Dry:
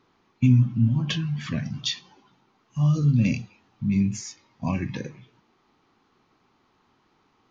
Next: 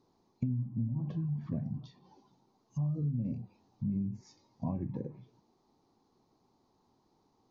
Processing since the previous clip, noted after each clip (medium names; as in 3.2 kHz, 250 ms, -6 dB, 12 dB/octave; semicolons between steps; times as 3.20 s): compression 12:1, threshold -25 dBFS, peak gain reduction 13 dB; low-pass that closes with the level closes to 1.1 kHz, closed at -29.5 dBFS; high-order bell 2 kHz -14.5 dB; trim -4.5 dB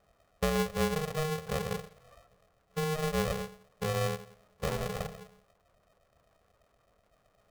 LFO low-pass square 8.1 Hz 380–1600 Hz; on a send at -9 dB: reverberation RT60 0.55 s, pre-delay 4 ms; on the sum: polarity switched at an audio rate 310 Hz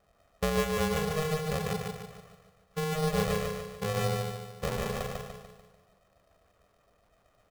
feedback delay 147 ms, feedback 46%, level -3 dB